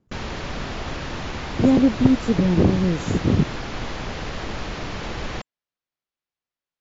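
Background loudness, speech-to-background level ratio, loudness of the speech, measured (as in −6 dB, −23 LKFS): −31.0 LKFS, 11.0 dB, −20.0 LKFS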